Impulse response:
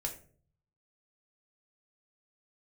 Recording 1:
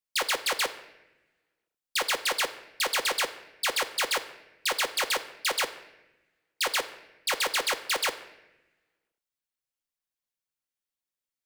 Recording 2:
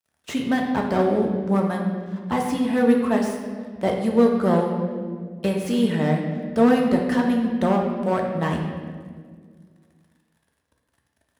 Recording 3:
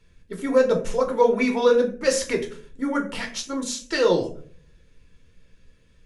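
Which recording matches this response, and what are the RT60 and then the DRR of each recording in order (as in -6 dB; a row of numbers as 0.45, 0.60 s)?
3; 0.95, 1.8, 0.50 s; 4.5, 0.5, 1.5 dB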